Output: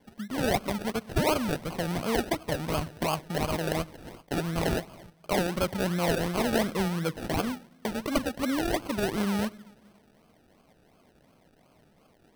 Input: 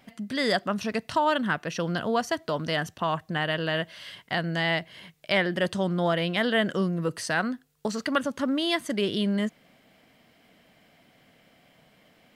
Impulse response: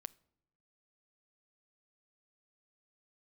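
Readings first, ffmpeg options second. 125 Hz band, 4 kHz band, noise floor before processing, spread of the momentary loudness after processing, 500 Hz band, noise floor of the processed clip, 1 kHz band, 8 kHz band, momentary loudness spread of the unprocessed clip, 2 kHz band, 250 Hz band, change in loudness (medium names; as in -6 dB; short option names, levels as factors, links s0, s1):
0.0 dB, -5.5 dB, -61 dBFS, 7 LU, -1.5 dB, -62 dBFS, -3.0 dB, +3.5 dB, 7 LU, -6.5 dB, -1.0 dB, -2.5 dB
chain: -filter_complex "[1:a]atrim=start_sample=2205,asetrate=23814,aresample=44100[s0];[0:a][s0]afir=irnorm=-1:irlink=0,acrusher=samples=33:mix=1:aa=0.000001:lfo=1:lforange=19.8:lforate=2.8,bandreject=f=7000:w=8.2"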